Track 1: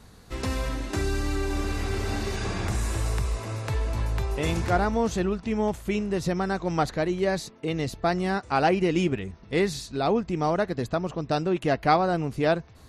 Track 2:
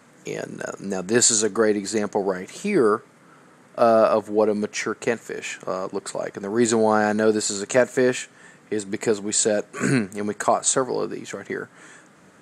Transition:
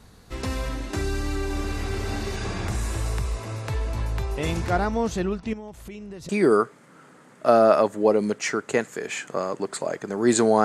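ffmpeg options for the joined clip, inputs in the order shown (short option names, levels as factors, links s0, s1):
-filter_complex "[0:a]asettb=1/sr,asplit=3[s0][s1][s2];[s0]atrim=end=5.534[s3];[s1]atrim=start=5.53:end=6.29,asetpts=PTS-STARTPTS,afade=t=in:d=0.004:c=qsin,afade=t=out:st=0.756:d=0.004:c=qsin,acompressor=threshold=0.0141:ratio=4:attack=3.2:release=140:knee=1:detection=peak[s4];[s2]atrim=start=6.286[s5];[s3][s4]acrossfade=d=0.004:c1=hsin:c2=qsin[s6];[s6][s5]acrossfade=d=0.004:c1=qsin:c2=hsin,apad=whole_dur=10.64,atrim=end=10.64,atrim=end=6.292[s7];[1:a]atrim=start=2.618:end=6.97[s8];[s7][s8]acrossfade=d=0.004:c1=hsin:c2=hsin"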